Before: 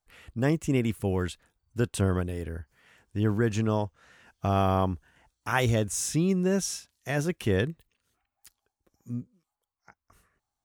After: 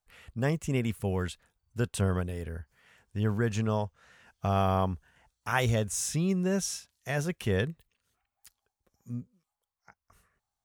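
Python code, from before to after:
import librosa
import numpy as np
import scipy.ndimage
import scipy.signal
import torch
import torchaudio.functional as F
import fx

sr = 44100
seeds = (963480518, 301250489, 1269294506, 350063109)

y = fx.peak_eq(x, sr, hz=310.0, db=-9.5, octaves=0.37)
y = y * librosa.db_to_amplitude(-1.5)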